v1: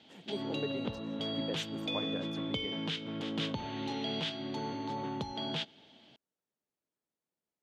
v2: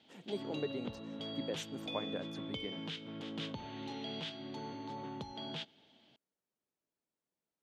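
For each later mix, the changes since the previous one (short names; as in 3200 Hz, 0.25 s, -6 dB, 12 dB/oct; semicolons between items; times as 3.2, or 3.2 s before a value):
background -6.5 dB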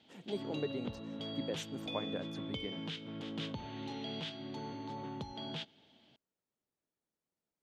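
master: add low shelf 120 Hz +6.5 dB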